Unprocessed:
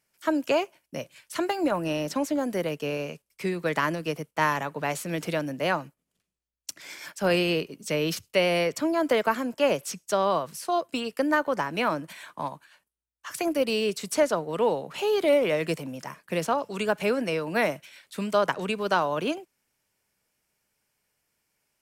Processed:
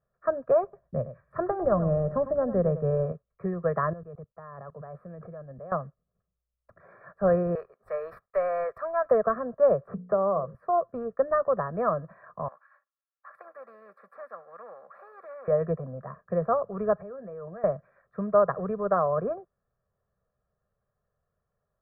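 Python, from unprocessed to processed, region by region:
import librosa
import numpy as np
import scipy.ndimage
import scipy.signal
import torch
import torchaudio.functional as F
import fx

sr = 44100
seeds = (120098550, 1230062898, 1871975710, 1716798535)

y = fx.chain(x, sr, fx.low_shelf(hz=260.0, db=9.0),
    fx.echo_single(ms=101, db=-12.5), at=(0.63, 3.12))
y = fx.chain(y, sr, fx.notch(hz=1900.0, q=22.0),
    fx.level_steps(step_db=21), at=(3.93, 5.72))
y = fx.chain(y, sr, fx.highpass(hz=710.0, slope=12),
    fx.tilt_eq(slope=4.0),
    fx.leveller(passes=1), at=(7.55, 9.11))
y = fx.chain(y, sr, fx.spacing_loss(db_at_10k=43),
    fx.hum_notches(base_hz=60, count=9),
    fx.band_squash(depth_pct=70), at=(9.87, 10.55))
y = fx.chain(y, sr, fx.bessel_highpass(hz=2600.0, order=2),
    fx.comb(ms=3.6, depth=0.52),
    fx.spectral_comp(ratio=2.0), at=(12.48, 15.48))
y = fx.chain(y, sr, fx.doubler(ms=15.0, db=-12.0),
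    fx.level_steps(step_db=20), at=(17.01, 17.64))
y = scipy.signal.sosfilt(scipy.signal.ellip(4, 1.0, 50, 1500.0, 'lowpass', fs=sr, output='sos'), y)
y = fx.low_shelf(y, sr, hz=200.0, db=7.5)
y = y + 0.95 * np.pad(y, (int(1.7 * sr / 1000.0), 0))[:len(y)]
y = F.gain(torch.from_numpy(y), -3.0).numpy()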